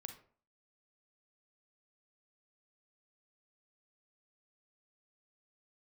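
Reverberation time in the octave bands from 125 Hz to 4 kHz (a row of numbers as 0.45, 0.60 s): 0.45, 0.50, 0.45, 0.45, 0.35, 0.25 s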